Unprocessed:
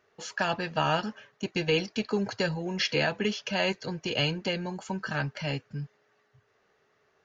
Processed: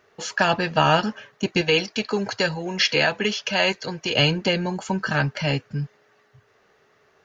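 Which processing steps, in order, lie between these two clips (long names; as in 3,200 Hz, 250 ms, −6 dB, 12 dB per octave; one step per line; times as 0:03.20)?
0:01.61–0:04.14: low-shelf EQ 440 Hz −7.5 dB
level +8.5 dB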